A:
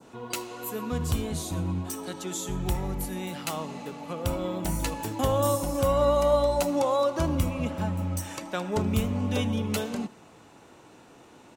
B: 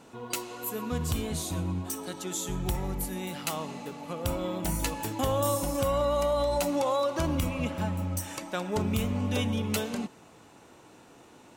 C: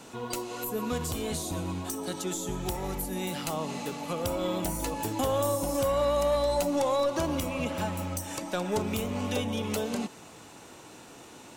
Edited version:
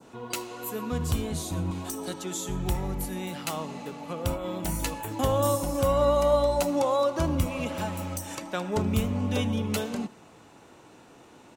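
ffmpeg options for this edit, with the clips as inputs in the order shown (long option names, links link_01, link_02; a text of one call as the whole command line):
ffmpeg -i take0.wav -i take1.wav -i take2.wav -filter_complex "[2:a]asplit=2[link_01][link_02];[0:a]asplit=4[link_03][link_04][link_05][link_06];[link_03]atrim=end=1.712[link_07];[link_01]atrim=start=1.708:end=2.142[link_08];[link_04]atrim=start=2.138:end=4.48[link_09];[1:a]atrim=start=4.32:end=5.13[link_10];[link_05]atrim=start=4.97:end=7.462[link_11];[link_02]atrim=start=7.458:end=8.352[link_12];[link_06]atrim=start=8.348[link_13];[link_07][link_08]acrossfade=duration=0.004:curve1=hsin:curve2=hsin[link_14];[link_14][link_09]acrossfade=duration=0.004:curve1=hsin:curve2=hsin[link_15];[link_15][link_10]acrossfade=duration=0.16:curve1=tri:curve2=tri[link_16];[link_16][link_11]acrossfade=duration=0.16:curve1=tri:curve2=tri[link_17];[link_17][link_12]acrossfade=duration=0.004:curve1=hsin:curve2=hsin[link_18];[link_18][link_13]acrossfade=duration=0.004:curve1=hsin:curve2=hsin" out.wav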